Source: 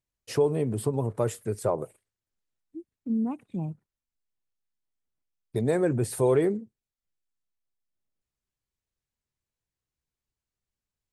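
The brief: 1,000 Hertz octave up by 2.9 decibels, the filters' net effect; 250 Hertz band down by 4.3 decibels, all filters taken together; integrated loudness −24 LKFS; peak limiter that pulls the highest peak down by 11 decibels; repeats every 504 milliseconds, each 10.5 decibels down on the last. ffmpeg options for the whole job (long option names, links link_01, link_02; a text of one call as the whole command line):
ffmpeg -i in.wav -af "equalizer=frequency=250:width_type=o:gain=-6.5,equalizer=frequency=1000:width_type=o:gain=4,alimiter=limit=-23.5dB:level=0:latency=1,aecho=1:1:504|1008|1512:0.299|0.0896|0.0269,volume=10.5dB" out.wav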